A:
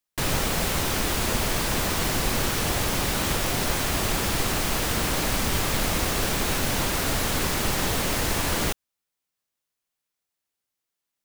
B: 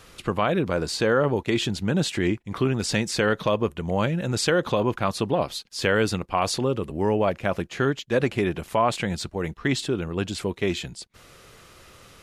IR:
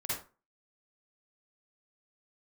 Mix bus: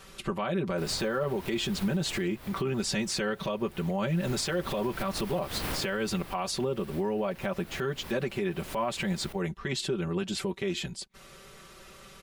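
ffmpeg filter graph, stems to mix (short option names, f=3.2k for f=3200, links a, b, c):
-filter_complex "[0:a]equalizer=f=6.8k:t=o:w=0.79:g=-9,adelay=600,volume=5dB,afade=t=out:st=2.11:d=0.24:silence=0.354813,afade=t=in:st=4.07:d=0.41:silence=0.237137,afade=t=out:st=5.71:d=0.6:silence=0.281838,asplit=2[a][b];[b]volume=-20.5dB[c];[1:a]aecho=1:1:5.2:0.84,volume=-3dB,asplit=2[d][e];[e]apad=whole_len=522451[f];[a][f]sidechaincompress=threshold=-35dB:ratio=8:attack=11:release=175[g];[2:a]atrim=start_sample=2205[h];[c][h]afir=irnorm=-1:irlink=0[i];[g][d][i]amix=inputs=3:normalize=0,alimiter=limit=-21dB:level=0:latency=1:release=136"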